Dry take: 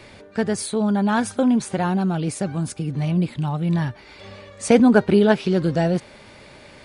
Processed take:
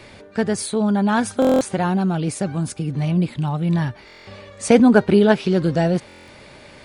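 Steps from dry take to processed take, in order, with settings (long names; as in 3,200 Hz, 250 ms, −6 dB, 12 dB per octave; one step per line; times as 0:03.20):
buffer that repeats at 0:01.40/0:04.06/0:06.07, samples 1,024, times 8
level +1.5 dB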